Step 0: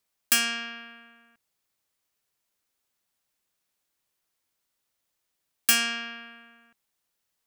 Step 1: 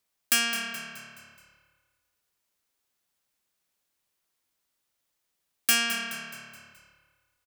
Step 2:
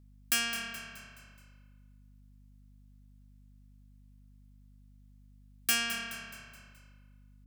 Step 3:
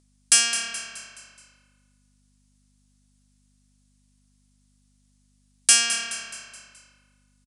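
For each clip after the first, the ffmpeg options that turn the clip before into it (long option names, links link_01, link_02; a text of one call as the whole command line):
ffmpeg -i in.wav -filter_complex "[0:a]asoftclip=type=tanh:threshold=-12.5dB,asplit=6[link_01][link_02][link_03][link_04][link_05][link_06];[link_02]adelay=212,afreqshift=-36,volume=-11.5dB[link_07];[link_03]adelay=424,afreqshift=-72,volume=-17.9dB[link_08];[link_04]adelay=636,afreqshift=-108,volume=-24.3dB[link_09];[link_05]adelay=848,afreqshift=-144,volume=-30.6dB[link_10];[link_06]adelay=1060,afreqshift=-180,volume=-37dB[link_11];[link_01][link_07][link_08][link_09][link_10][link_11]amix=inputs=6:normalize=0" out.wav
ffmpeg -i in.wav -af "aeval=exprs='val(0)+0.00282*(sin(2*PI*50*n/s)+sin(2*PI*2*50*n/s)/2+sin(2*PI*3*50*n/s)/3+sin(2*PI*4*50*n/s)/4+sin(2*PI*5*50*n/s)/5)':channel_layout=same,volume=-5.5dB" out.wav
ffmpeg -i in.wav -af "bass=frequency=250:gain=-13,treble=frequency=4000:gain=13,aresample=22050,aresample=44100,volume=5dB" out.wav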